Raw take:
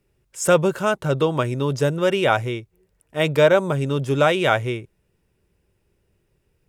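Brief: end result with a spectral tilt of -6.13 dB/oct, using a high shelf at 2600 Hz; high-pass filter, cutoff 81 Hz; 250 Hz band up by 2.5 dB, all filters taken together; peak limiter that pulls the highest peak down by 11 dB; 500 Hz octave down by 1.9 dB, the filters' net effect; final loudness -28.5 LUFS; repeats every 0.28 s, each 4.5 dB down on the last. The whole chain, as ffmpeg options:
-af "highpass=81,equalizer=f=250:t=o:g=5.5,equalizer=f=500:t=o:g=-3.5,highshelf=f=2.6k:g=-4,alimiter=limit=-15dB:level=0:latency=1,aecho=1:1:280|560|840|1120|1400|1680|1960|2240|2520:0.596|0.357|0.214|0.129|0.0772|0.0463|0.0278|0.0167|0.01,volume=-4.5dB"

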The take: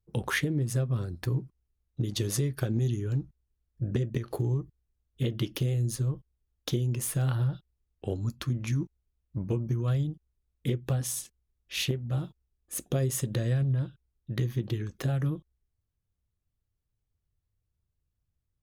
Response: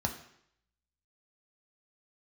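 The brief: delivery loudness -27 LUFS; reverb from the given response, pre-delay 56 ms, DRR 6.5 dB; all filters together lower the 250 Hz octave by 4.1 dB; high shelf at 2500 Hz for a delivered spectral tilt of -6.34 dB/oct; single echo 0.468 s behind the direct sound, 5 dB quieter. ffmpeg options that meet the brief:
-filter_complex "[0:a]equalizer=f=250:t=o:g=-7.5,highshelf=f=2.5k:g=-4,aecho=1:1:468:0.562,asplit=2[a][b];[1:a]atrim=start_sample=2205,adelay=56[c];[b][c]afir=irnorm=-1:irlink=0,volume=-11.5dB[d];[a][d]amix=inputs=2:normalize=0,volume=1.5dB"

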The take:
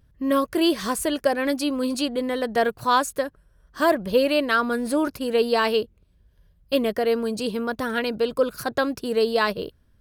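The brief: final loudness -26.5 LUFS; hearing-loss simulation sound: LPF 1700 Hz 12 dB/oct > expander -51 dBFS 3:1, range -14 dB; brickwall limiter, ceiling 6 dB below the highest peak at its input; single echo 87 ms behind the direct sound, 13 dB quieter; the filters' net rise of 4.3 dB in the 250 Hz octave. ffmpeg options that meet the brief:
-af "equalizer=f=250:t=o:g=5,alimiter=limit=-12.5dB:level=0:latency=1,lowpass=1.7k,aecho=1:1:87:0.224,agate=range=-14dB:threshold=-51dB:ratio=3,volume=-3dB"

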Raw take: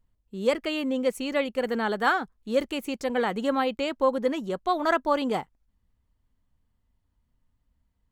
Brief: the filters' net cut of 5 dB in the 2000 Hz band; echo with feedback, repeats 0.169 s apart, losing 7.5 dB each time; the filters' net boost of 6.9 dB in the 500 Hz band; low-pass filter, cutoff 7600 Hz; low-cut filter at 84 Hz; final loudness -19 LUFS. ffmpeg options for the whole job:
-af "highpass=84,lowpass=7.6k,equalizer=f=500:t=o:g=8,equalizer=f=2k:t=o:g=-7.5,aecho=1:1:169|338|507|676|845:0.422|0.177|0.0744|0.0312|0.0131,volume=3dB"

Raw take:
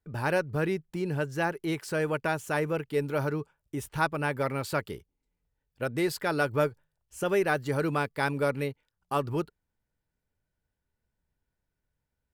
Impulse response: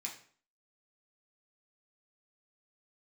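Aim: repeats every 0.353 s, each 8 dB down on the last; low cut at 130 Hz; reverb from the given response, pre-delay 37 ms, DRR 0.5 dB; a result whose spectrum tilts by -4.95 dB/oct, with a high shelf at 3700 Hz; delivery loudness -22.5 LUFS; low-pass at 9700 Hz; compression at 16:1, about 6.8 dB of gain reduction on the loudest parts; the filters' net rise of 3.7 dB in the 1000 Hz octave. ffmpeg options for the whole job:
-filter_complex "[0:a]highpass=130,lowpass=9.7k,equalizer=f=1k:t=o:g=4.5,highshelf=f=3.7k:g=4.5,acompressor=threshold=-25dB:ratio=16,aecho=1:1:353|706|1059|1412|1765:0.398|0.159|0.0637|0.0255|0.0102,asplit=2[a][b];[1:a]atrim=start_sample=2205,adelay=37[c];[b][c]afir=irnorm=-1:irlink=0,volume=0.5dB[d];[a][d]amix=inputs=2:normalize=0,volume=8dB"

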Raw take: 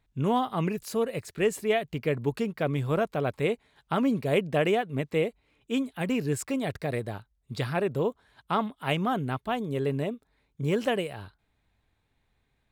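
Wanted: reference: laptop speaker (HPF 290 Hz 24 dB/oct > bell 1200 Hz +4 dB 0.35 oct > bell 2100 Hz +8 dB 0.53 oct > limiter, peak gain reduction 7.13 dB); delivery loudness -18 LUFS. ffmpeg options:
-af "highpass=f=290:w=0.5412,highpass=f=290:w=1.3066,equalizer=f=1.2k:t=o:w=0.35:g=4,equalizer=f=2.1k:t=o:w=0.53:g=8,volume=13dB,alimiter=limit=-4.5dB:level=0:latency=1"

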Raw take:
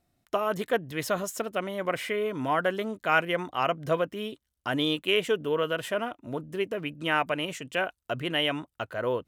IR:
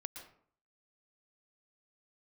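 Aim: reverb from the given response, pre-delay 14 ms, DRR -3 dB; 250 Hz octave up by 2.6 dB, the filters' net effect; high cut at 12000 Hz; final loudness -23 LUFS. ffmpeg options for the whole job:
-filter_complex "[0:a]lowpass=12k,equalizer=f=250:t=o:g=3.5,asplit=2[a][b];[1:a]atrim=start_sample=2205,adelay=14[c];[b][c]afir=irnorm=-1:irlink=0,volume=6dB[d];[a][d]amix=inputs=2:normalize=0,volume=0.5dB"

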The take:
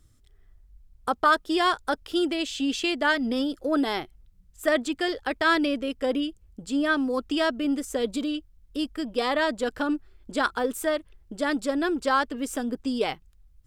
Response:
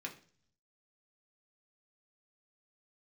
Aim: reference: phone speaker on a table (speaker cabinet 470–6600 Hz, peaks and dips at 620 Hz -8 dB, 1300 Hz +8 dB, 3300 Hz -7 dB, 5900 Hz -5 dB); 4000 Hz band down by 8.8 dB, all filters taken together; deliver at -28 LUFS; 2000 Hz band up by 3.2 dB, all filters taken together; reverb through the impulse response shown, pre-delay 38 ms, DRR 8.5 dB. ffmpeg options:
-filter_complex "[0:a]equalizer=f=2k:t=o:g=3,equalizer=f=4k:t=o:g=-7,asplit=2[a][b];[1:a]atrim=start_sample=2205,adelay=38[c];[b][c]afir=irnorm=-1:irlink=0,volume=-8dB[d];[a][d]amix=inputs=2:normalize=0,highpass=f=470:w=0.5412,highpass=f=470:w=1.3066,equalizer=f=620:t=q:w=4:g=-8,equalizer=f=1.3k:t=q:w=4:g=8,equalizer=f=3.3k:t=q:w=4:g=-7,equalizer=f=5.9k:t=q:w=4:g=-5,lowpass=f=6.6k:w=0.5412,lowpass=f=6.6k:w=1.3066,volume=-3dB"

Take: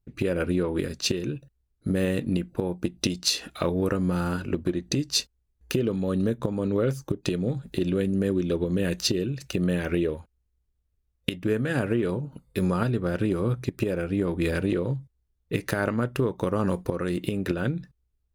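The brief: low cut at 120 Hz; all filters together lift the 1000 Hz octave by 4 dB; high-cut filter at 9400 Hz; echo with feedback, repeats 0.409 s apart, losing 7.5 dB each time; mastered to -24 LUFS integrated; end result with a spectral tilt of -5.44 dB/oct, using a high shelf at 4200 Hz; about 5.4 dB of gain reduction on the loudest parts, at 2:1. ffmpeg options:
-af "highpass=120,lowpass=9.4k,equalizer=f=1k:t=o:g=5.5,highshelf=f=4.2k:g=-3,acompressor=threshold=-30dB:ratio=2,aecho=1:1:409|818|1227|1636|2045:0.422|0.177|0.0744|0.0312|0.0131,volume=8dB"

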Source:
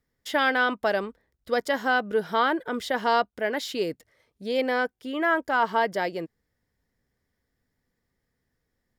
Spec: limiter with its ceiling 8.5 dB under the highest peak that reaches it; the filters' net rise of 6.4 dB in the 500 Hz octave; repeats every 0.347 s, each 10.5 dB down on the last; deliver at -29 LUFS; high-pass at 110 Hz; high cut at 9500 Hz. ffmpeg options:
-af "highpass=110,lowpass=9.5k,equalizer=f=500:t=o:g=7.5,alimiter=limit=-15.5dB:level=0:latency=1,aecho=1:1:347|694|1041:0.299|0.0896|0.0269,volume=-3dB"

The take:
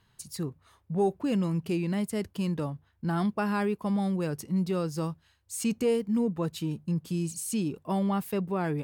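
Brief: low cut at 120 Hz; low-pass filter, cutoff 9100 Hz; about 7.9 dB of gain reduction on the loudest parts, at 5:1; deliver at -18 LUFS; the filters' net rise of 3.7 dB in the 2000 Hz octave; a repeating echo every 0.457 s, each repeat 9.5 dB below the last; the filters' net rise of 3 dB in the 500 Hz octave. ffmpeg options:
-af "highpass=120,lowpass=9.1k,equalizer=f=500:t=o:g=3.5,equalizer=f=2k:t=o:g=5,acompressor=threshold=-27dB:ratio=5,aecho=1:1:457|914|1371|1828:0.335|0.111|0.0365|0.012,volume=14.5dB"

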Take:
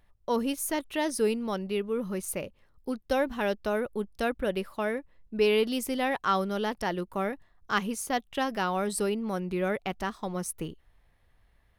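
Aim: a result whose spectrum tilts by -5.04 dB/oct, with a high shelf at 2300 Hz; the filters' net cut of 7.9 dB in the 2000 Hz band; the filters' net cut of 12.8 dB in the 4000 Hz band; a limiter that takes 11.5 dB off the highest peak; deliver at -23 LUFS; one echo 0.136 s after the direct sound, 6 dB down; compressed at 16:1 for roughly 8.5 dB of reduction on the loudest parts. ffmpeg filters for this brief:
-af "equalizer=f=2k:t=o:g=-4.5,highshelf=f=2.3k:g=-9,equalizer=f=4k:t=o:g=-8,acompressor=threshold=-29dB:ratio=16,alimiter=level_in=7dB:limit=-24dB:level=0:latency=1,volume=-7dB,aecho=1:1:136:0.501,volume=16.5dB"

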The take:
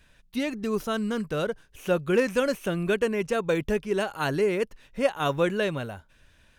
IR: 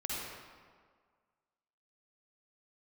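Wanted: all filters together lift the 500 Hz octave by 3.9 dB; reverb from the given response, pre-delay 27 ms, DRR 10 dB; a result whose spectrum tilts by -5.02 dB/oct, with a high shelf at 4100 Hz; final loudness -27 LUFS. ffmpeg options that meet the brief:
-filter_complex "[0:a]equalizer=f=500:t=o:g=4.5,highshelf=f=4.1k:g=-3.5,asplit=2[a][b];[1:a]atrim=start_sample=2205,adelay=27[c];[b][c]afir=irnorm=-1:irlink=0,volume=-13.5dB[d];[a][d]amix=inputs=2:normalize=0,volume=-3dB"

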